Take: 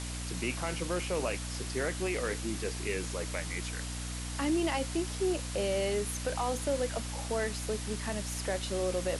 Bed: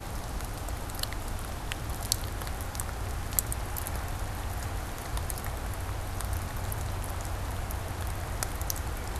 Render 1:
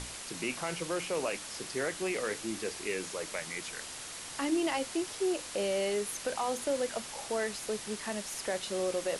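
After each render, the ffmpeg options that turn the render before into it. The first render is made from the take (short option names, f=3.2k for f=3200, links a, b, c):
-af "bandreject=f=60:t=h:w=6,bandreject=f=120:t=h:w=6,bandreject=f=180:t=h:w=6,bandreject=f=240:t=h:w=6,bandreject=f=300:t=h:w=6"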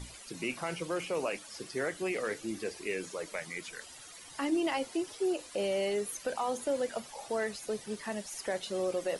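-af "afftdn=nr=14:nf=-44"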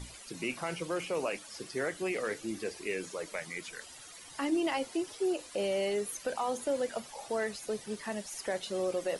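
-af anull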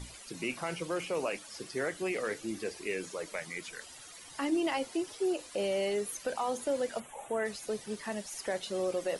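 -filter_complex "[0:a]asplit=3[a][b][c];[a]afade=t=out:st=6.99:d=0.02[d];[b]asuperstop=centerf=4800:order=4:qfactor=1.1,afade=t=in:st=6.99:d=0.02,afade=t=out:st=7.44:d=0.02[e];[c]afade=t=in:st=7.44:d=0.02[f];[d][e][f]amix=inputs=3:normalize=0"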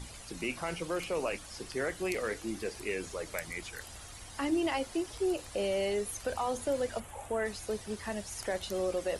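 -filter_complex "[1:a]volume=-17.5dB[a];[0:a][a]amix=inputs=2:normalize=0"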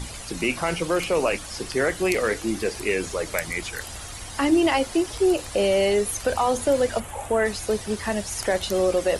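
-af "volume=11dB"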